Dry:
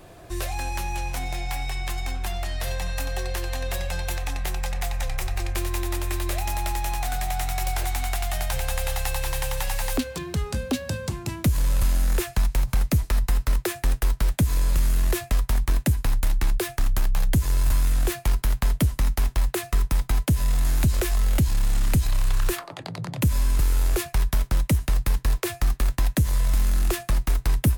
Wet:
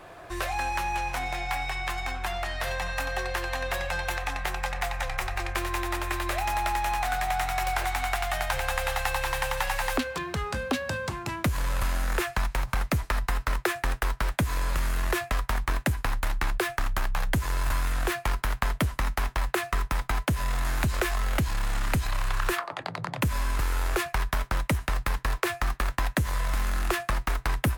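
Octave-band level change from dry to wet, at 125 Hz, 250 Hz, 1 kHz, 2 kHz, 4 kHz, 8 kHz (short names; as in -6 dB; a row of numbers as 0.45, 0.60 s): -6.5, -4.0, +5.0, +5.0, -0.5, -5.0 dB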